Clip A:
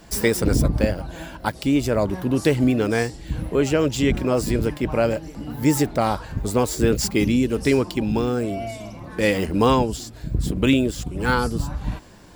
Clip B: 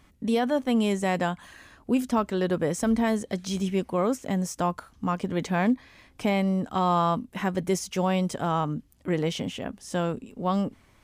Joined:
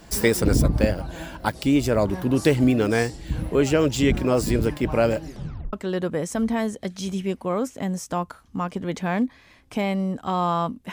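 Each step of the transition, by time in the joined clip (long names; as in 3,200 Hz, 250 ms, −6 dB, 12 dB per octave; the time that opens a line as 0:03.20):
clip A
0:05.25: tape stop 0.48 s
0:05.73: continue with clip B from 0:02.21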